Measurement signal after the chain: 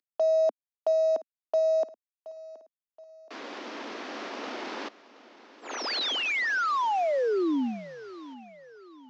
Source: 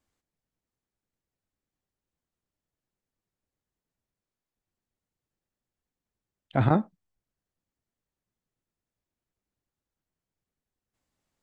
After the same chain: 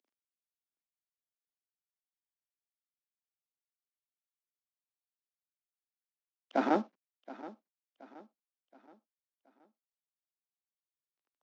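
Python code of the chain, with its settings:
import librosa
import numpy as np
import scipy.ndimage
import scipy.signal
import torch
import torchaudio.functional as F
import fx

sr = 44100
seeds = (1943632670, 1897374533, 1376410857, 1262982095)

y = fx.cvsd(x, sr, bps=32000)
y = scipy.signal.sosfilt(scipy.signal.butter(8, 240.0, 'highpass', fs=sr, output='sos'), y)
y = fx.high_shelf(y, sr, hz=3100.0, db=-10.5)
y = fx.rider(y, sr, range_db=3, speed_s=2.0)
y = fx.echo_feedback(y, sr, ms=724, feedback_pct=43, wet_db=-17.5)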